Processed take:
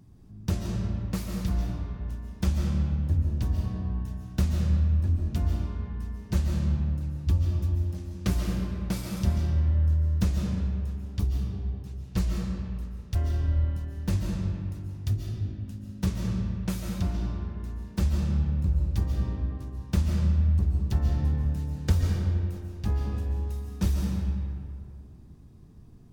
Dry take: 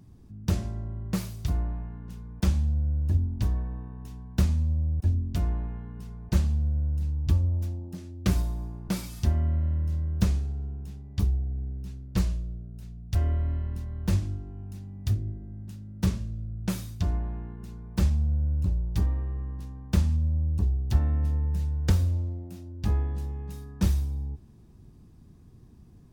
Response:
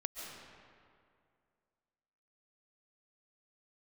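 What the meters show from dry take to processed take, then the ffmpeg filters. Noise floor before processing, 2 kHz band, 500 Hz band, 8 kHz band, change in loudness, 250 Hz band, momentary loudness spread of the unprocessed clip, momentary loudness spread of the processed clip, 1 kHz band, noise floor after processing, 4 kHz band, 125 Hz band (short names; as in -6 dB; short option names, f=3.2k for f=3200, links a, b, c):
-52 dBFS, +1.0 dB, +1.0 dB, -0.5 dB, 0.0 dB, +1.5 dB, 14 LU, 10 LU, +0.5 dB, -47 dBFS, +0.5 dB, +0.5 dB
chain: -filter_complex "[1:a]atrim=start_sample=2205[a];[0:a][a]afir=irnorm=-1:irlink=0,volume=1dB"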